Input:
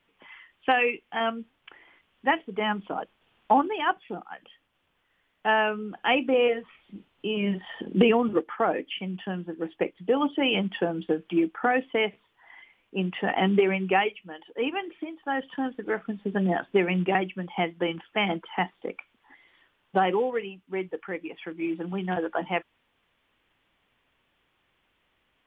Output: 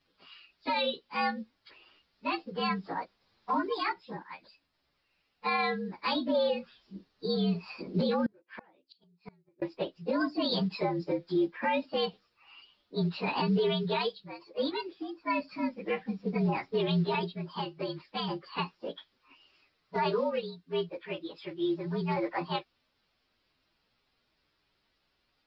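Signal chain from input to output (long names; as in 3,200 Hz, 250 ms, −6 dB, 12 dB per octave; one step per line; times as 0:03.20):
partials spread apart or drawn together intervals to 116%
brickwall limiter −20.5 dBFS, peak gain reduction 9 dB
0:08.26–0:09.62: gate with flip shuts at −29 dBFS, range −32 dB
0:17.35–0:18.47: downward compressor 1.5 to 1, threshold −37 dBFS, peak gain reduction 4 dB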